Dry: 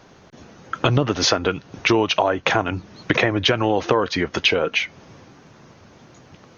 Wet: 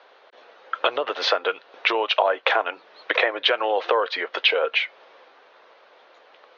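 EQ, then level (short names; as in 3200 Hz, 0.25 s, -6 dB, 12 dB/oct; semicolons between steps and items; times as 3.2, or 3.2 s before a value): elliptic band-pass 490–3900 Hz, stop band 70 dB; 0.0 dB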